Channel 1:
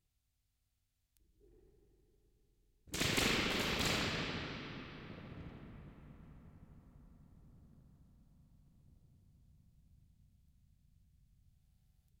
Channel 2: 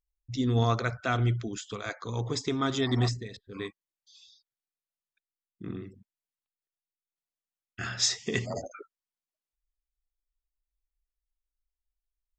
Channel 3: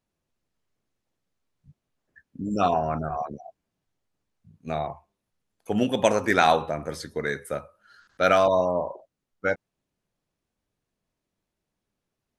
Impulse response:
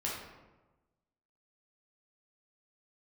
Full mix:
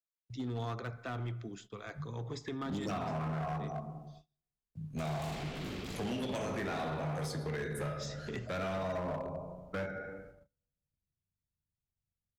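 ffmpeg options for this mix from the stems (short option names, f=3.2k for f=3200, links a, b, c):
-filter_complex "[0:a]lowshelf=f=470:g=10,asoftclip=type=tanh:threshold=-31dB,adelay=2050,volume=-9.5dB,asplit=2[a][b];[b]volume=-8.5dB[c];[1:a]highshelf=f=4.5k:g=-10,volume=-9dB,asplit=3[d][e][f];[e]volume=-18.5dB[g];[2:a]equalizer=f=150:w=6:g=14.5,adelay=300,volume=2dB,asplit=2[h][i];[i]volume=-10.5dB[j];[f]apad=whole_len=559274[k];[h][k]sidechaincompress=threshold=-40dB:ratio=8:attack=5.9:release=293[l];[d][l]amix=inputs=2:normalize=0,alimiter=limit=-22.5dB:level=0:latency=1:release=384,volume=0dB[m];[3:a]atrim=start_sample=2205[n];[c][g][j]amix=inputs=3:normalize=0[o];[o][n]afir=irnorm=-1:irlink=0[p];[a][m][p]amix=inputs=3:normalize=0,agate=range=-29dB:threshold=-53dB:ratio=16:detection=peak,acrossover=split=110|320|1100[q][r][s][t];[q]acompressor=threshold=-46dB:ratio=4[u];[r]acompressor=threshold=-39dB:ratio=4[v];[s]acompressor=threshold=-39dB:ratio=4[w];[t]acompressor=threshold=-43dB:ratio=4[x];[u][v][w][x]amix=inputs=4:normalize=0,asoftclip=type=hard:threshold=-32.5dB"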